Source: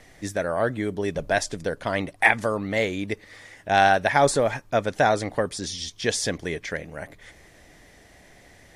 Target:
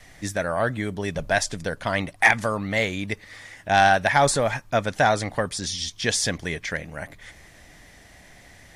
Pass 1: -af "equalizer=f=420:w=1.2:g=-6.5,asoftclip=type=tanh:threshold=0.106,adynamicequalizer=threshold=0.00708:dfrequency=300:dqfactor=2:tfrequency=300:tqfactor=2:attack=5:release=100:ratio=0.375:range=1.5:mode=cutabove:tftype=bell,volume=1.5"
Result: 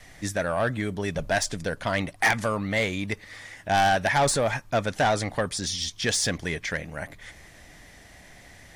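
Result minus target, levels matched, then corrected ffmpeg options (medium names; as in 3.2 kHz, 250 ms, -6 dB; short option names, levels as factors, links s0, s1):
saturation: distortion +11 dB
-af "equalizer=f=420:w=1.2:g=-6.5,asoftclip=type=tanh:threshold=0.355,adynamicequalizer=threshold=0.00708:dfrequency=300:dqfactor=2:tfrequency=300:tqfactor=2:attack=5:release=100:ratio=0.375:range=1.5:mode=cutabove:tftype=bell,volume=1.5"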